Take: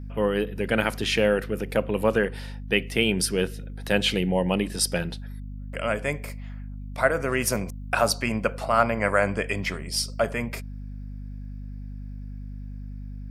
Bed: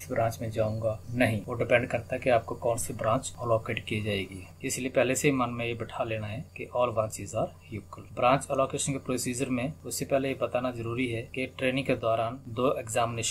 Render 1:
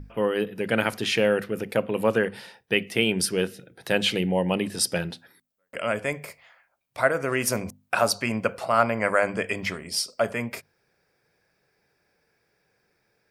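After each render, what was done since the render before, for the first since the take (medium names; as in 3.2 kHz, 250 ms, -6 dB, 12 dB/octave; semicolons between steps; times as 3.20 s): hum notches 50/100/150/200/250 Hz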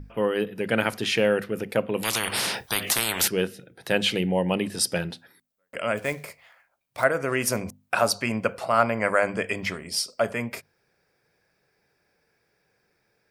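2.03–3.28 s: spectrum-flattening compressor 10:1; 5.97–7.04 s: short-mantissa float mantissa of 2-bit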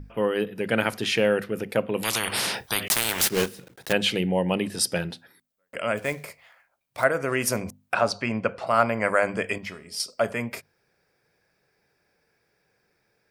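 2.88–3.94 s: block-companded coder 3-bit; 7.94–8.67 s: distance through air 100 m; 9.58–10.00 s: feedback comb 210 Hz, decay 0.43 s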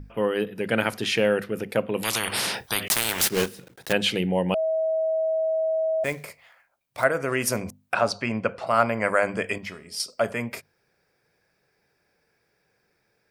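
4.54–6.04 s: bleep 641 Hz -21 dBFS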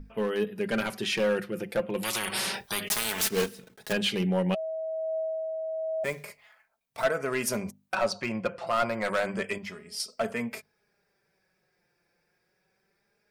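hard clipper -17 dBFS, distortion -13 dB; flange 0.29 Hz, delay 4.4 ms, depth 1.4 ms, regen +27%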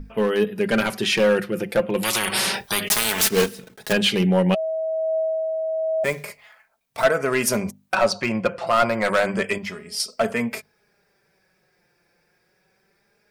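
trim +8 dB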